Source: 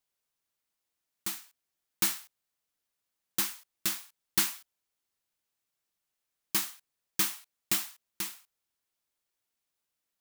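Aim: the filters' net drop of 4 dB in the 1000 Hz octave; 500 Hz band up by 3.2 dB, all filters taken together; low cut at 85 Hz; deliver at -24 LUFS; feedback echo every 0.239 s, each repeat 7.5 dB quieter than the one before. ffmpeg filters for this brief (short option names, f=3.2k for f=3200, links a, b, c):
-af "highpass=85,equalizer=f=500:t=o:g=7.5,equalizer=f=1k:t=o:g=-7,aecho=1:1:239|478|717|956|1195:0.422|0.177|0.0744|0.0312|0.0131,volume=8dB"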